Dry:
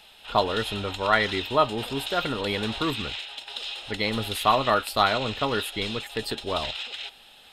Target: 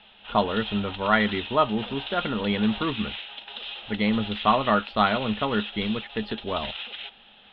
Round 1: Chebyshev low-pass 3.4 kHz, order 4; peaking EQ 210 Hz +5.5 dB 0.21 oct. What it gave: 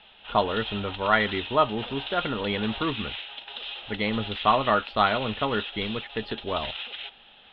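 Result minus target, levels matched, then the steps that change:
250 Hz band -4.0 dB
change: peaking EQ 210 Hz +14 dB 0.21 oct

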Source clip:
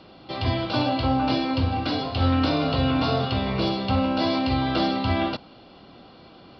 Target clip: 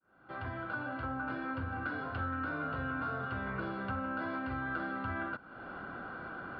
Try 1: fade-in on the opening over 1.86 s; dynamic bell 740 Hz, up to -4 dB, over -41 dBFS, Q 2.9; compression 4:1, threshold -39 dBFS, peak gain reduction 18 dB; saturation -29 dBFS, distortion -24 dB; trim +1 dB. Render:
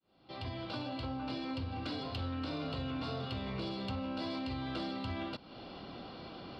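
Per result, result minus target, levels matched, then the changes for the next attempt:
2 kHz band -10.0 dB; saturation: distortion +13 dB
add after dynamic bell: resonant low-pass 1.5 kHz, resonance Q 11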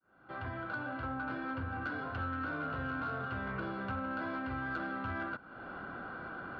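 saturation: distortion +15 dB
change: saturation -20.5 dBFS, distortion -37 dB

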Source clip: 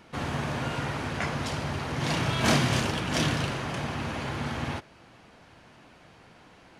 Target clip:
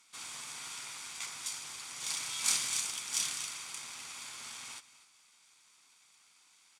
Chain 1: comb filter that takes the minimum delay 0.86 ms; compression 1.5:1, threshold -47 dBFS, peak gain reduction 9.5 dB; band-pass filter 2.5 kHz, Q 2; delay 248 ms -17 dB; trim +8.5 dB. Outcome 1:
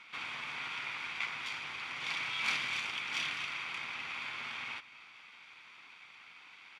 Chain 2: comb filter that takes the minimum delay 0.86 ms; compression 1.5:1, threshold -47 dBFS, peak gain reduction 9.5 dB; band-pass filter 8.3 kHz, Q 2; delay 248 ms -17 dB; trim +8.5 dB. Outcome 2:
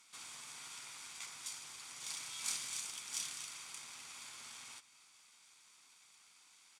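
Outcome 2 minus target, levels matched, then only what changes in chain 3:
compression: peak gain reduction +9.5 dB
remove: compression 1.5:1, threshold -47 dBFS, peak gain reduction 9.5 dB

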